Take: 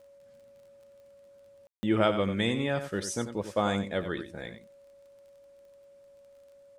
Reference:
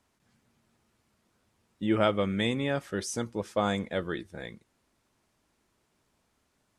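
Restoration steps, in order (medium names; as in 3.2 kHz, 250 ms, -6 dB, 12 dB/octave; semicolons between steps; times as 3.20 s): de-click; band-stop 560 Hz, Q 30; room tone fill 1.67–1.83 s; inverse comb 91 ms -10.5 dB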